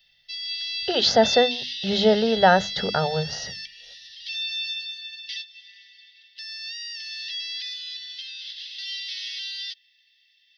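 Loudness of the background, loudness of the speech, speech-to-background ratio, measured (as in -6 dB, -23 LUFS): -30.0 LUFS, -21.0 LUFS, 9.0 dB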